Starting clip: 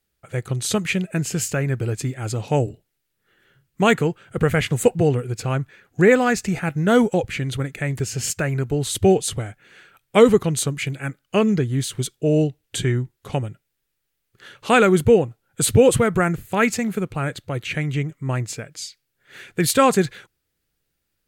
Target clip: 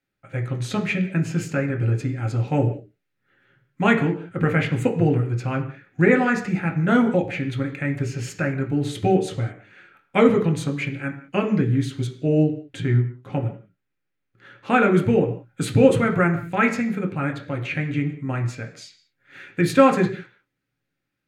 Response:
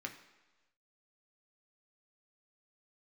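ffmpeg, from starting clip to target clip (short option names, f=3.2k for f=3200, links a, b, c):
-filter_complex "[0:a]asetnsamples=n=441:p=0,asendcmd='12.43 lowpass f 1300;14.91 lowpass f 2600',lowpass=f=2.3k:p=1[a];[1:a]atrim=start_sample=2205,afade=t=out:st=0.26:d=0.01,atrim=end_sample=11907[b];[a][b]afir=irnorm=-1:irlink=0,volume=1.5dB"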